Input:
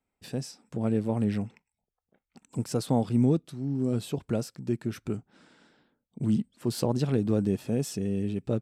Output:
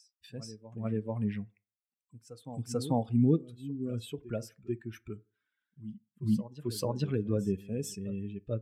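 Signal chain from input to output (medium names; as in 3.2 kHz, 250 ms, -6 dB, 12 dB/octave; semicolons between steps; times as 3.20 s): expander on every frequency bin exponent 2; reverse echo 440 ms -15 dB; FDN reverb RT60 0.37 s, low-frequency decay 0.85×, high-frequency decay 0.5×, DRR 16 dB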